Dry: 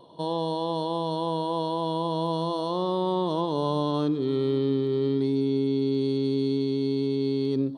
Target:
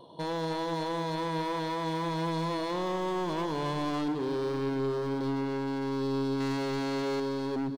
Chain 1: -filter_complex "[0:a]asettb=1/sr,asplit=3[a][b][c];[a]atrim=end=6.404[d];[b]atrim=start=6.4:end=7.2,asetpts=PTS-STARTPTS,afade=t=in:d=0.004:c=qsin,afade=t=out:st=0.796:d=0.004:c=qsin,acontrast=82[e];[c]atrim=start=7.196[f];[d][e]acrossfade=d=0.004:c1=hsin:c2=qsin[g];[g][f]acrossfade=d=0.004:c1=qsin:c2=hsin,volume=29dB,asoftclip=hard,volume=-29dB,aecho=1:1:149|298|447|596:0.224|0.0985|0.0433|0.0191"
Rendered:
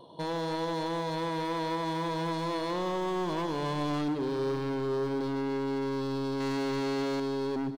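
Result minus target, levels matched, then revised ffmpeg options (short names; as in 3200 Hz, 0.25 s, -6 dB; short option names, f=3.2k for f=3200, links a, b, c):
echo 65 ms early
-filter_complex "[0:a]asettb=1/sr,asplit=3[a][b][c];[a]atrim=end=6.404[d];[b]atrim=start=6.4:end=7.2,asetpts=PTS-STARTPTS,afade=t=in:d=0.004:c=qsin,afade=t=out:st=0.796:d=0.004:c=qsin,acontrast=82[e];[c]atrim=start=7.196[f];[d][e]acrossfade=d=0.004:c1=hsin:c2=qsin[g];[g][f]acrossfade=d=0.004:c1=qsin:c2=hsin,volume=29dB,asoftclip=hard,volume=-29dB,aecho=1:1:214|428|642|856:0.224|0.0985|0.0433|0.0191"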